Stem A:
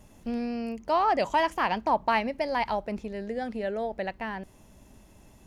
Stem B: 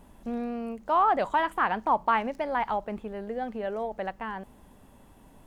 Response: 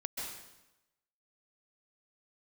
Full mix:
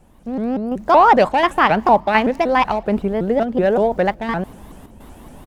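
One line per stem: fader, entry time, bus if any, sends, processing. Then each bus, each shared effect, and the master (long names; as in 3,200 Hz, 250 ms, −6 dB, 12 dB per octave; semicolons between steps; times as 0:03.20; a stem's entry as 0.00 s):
−5.0 dB, 0.00 s, send −22.5 dB, adaptive Wiener filter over 25 samples
+0.5 dB, 0.7 ms, no send, square-wave tremolo 1.4 Hz, depth 65%, duty 80%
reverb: on, RT60 0.95 s, pre-delay 123 ms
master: automatic gain control gain up to 13.5 dB; pitch modulation by a square or saw wave saw up 5.3 Hz, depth 250 cents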